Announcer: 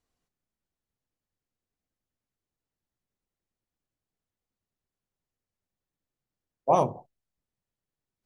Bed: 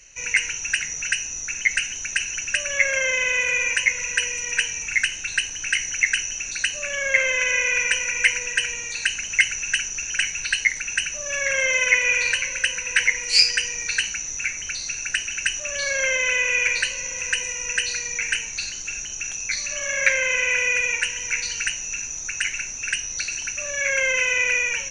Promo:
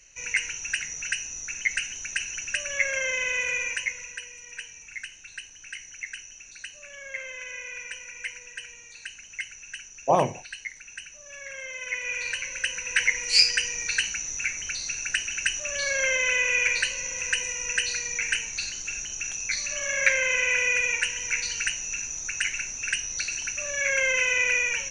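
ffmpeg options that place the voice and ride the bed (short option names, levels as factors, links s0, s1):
-filter_complex "[0:a]adelay=3400,volume=1.12[s0];[1:a]volume=2.66,afade=t=out:st=3.5:d=0.72:silence=0.281838,afade=t=in:st=11.77:d=1.48:silence=0.199526[s1];[s0][s1]amix=inputs=2:normalize=0"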